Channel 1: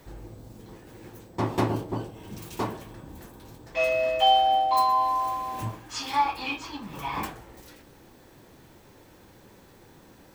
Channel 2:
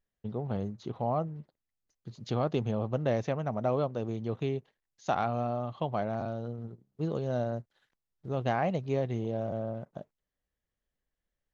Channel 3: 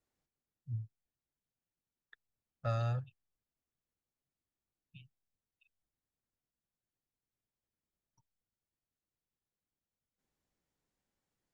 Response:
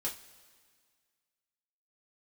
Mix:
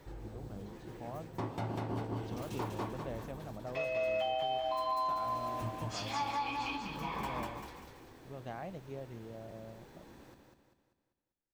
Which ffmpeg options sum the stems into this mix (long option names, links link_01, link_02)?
-filter_complex "[0:a]highshelf=frequency=6800:gain=-8,volume=0.5dB,asplit=2[link_01][link_02];[link_02]volume=-9dB[link_03];[1:a]volume=-14.5dB[link_04];[link_01]flanger=delay=2.2:depth=5.2:regen=-64:speed=0.38:shape=sinusoidal,acompressor=threshold=-42dB:ratio=1.5,volume=0dB[link_05];[link_03]aecho=0:1:196|392|588|784|980|1176:1|0.43|0.185|0.0795|0.0342|0.0147[link_06];[link_04][link_05][link_06]amix=inputs=3:normalize=0,alimiter=level_in=2dB:limit=-24dB:level=0:latency=1:release=236,volume=-2dB"